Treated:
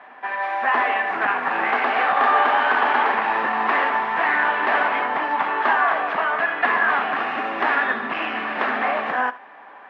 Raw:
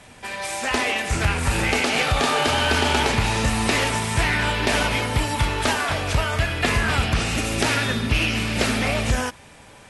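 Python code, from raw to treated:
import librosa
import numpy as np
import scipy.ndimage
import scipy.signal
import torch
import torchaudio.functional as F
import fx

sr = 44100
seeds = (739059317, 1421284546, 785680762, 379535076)

y = np.minimum(x, 2.0 * 10.0 ** (-18.5 / 20.0) - x)
y = fx.cabinet(y, sr, low_hz=290.0, low_slope=24, high_hz=2500.0, hz=(330.0, 490.0, 760.0, 1100.0, 1700.0, 2400.0), db=(-3, -4, 9, 10, 8, -4))
y = y + 10.0 ** (-17.5 / 20.0) * np.pad(y, (int(72 * sr / 1000.0), 0))[:len(y)]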